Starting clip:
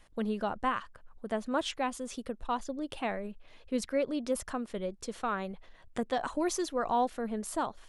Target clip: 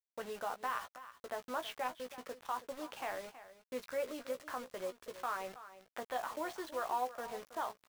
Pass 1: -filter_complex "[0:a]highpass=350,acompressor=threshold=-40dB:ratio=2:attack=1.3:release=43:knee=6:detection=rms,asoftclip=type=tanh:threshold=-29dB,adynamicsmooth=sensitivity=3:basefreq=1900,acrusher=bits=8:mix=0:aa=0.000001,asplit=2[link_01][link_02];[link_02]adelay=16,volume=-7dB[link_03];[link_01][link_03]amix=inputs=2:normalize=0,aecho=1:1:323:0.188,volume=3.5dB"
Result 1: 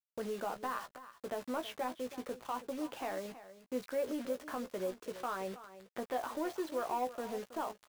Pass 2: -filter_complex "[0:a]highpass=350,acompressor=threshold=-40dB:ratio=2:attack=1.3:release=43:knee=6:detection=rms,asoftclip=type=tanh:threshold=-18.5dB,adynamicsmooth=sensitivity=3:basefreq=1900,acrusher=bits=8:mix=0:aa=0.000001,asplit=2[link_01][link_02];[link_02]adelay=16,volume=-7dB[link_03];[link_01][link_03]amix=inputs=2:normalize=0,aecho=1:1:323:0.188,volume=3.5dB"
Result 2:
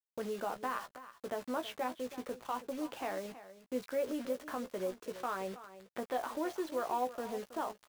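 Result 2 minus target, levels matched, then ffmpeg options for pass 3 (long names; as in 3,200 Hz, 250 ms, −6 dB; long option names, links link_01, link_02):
250 Hz band +7.0 dB
-filter_complex "[0:a]highpass=750,acompressor=threshold=-40dB:ratio=2:attack=1.3:release=43:knee=6:detection=rms,asoftclip=type=tanh:threshold=-18.5dB,adynamicsmooth=sensitivity=3:basefreq=1900,acrusher=bits=8:mix=0:aa=0.000001,asplit=2[link_01][link_02];[link_02]adelay=16,volume=-7dB[link_03];[link_01][link_03]amix=inputs=2:normalize=0,aecho=1:1:323:0.188,volume=3.5dB"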